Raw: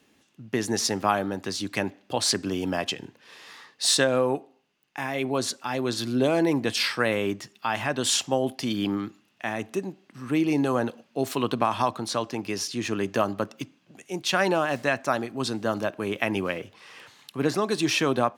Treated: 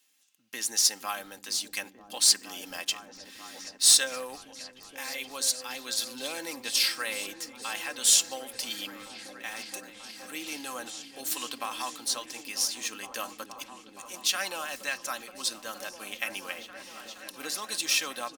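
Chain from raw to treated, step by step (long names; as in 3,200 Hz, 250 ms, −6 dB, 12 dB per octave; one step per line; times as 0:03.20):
first difference
comb filter 3.8 ms, depth 50%
in parallel at −5 dB: log-companded quantiser 4 bits
on the sum: echo whose low-pass opens from repeat to repeat 470 ms, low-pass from 200 Hz, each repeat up 1 octave, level −3 dB
level +1 dB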